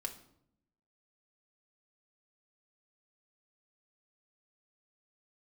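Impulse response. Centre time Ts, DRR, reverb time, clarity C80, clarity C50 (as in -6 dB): 11 ms, 2.0 dB, 0.70 s, 15.5 dB, 11.5 dB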